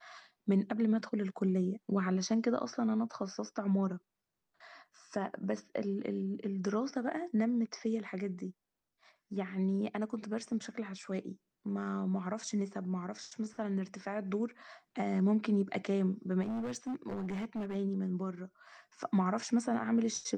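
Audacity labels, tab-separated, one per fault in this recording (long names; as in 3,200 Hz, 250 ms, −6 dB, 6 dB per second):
16.420000	17.760000	clipping −34 dBFS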